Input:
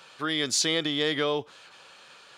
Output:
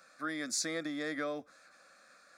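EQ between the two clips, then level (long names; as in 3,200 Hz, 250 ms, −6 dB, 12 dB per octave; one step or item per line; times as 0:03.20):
phaser with its sweep stopped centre 610 Hz, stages 8
−5.5 dB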